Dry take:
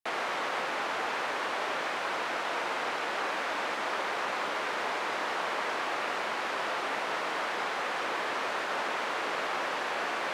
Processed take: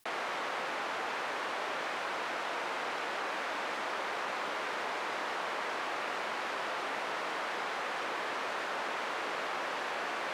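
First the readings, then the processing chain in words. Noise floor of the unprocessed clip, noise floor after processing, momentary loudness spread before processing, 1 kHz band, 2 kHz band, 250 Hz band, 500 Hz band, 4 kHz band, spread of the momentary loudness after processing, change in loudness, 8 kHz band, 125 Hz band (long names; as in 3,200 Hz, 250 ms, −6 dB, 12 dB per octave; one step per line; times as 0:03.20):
−34 dBFS, −37 dBFS, 0 LU, −3.5 dB, −3.5 dB, −3.5 dB, −3.5 dB, −3.5 dB, 0 LU, −3.5 dB, −3.5 dB, −3.5 dB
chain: envelope flattener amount 50%
level −4.5 dB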